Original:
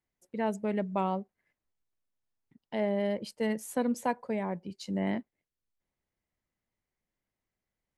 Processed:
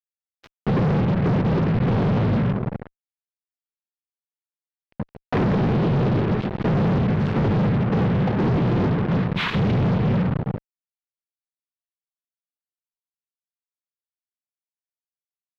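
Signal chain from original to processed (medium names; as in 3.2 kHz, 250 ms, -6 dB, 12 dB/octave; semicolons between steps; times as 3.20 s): low-pass that closes with the level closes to 340 Hz, closed at -28 dBFS; peaking EQ 260 Hz +4.5 dB 0.28 oct; compression 5:1, threshold -36 dBFS, peak gain reduction 11 dB; wide varispeed 0.512×; multi-head delay 72 ms, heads first and second, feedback 59%, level -13 dB; noise-vocoded speech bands 6; fuzz box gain 59 dB, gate -55 dBFS; distance through air 280 m; trim -4.5 dB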